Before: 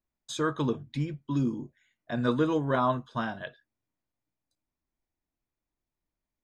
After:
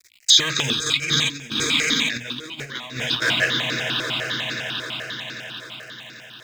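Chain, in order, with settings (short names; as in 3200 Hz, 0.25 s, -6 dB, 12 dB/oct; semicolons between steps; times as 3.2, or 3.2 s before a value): G.711 law mismatch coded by mu; band shelf 3800 Hz +13 dB 2.3 oct; limiter -21 dBFS, peak gain reduction 9.5 dB; HPF 80 Hz 6 dB/oct; notches 50/100/150/200/250/300 Hz; swelling echo 88 ms, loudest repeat 8, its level -14 dB; 0.86–3.22 negative-ratio compressor -35 dBFS, ratio -0.5; resonant high shelf 1500 Hz +10 dB, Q 1.5; step phaser 10 Hz 780–3100 Hz; gain +8.5 dB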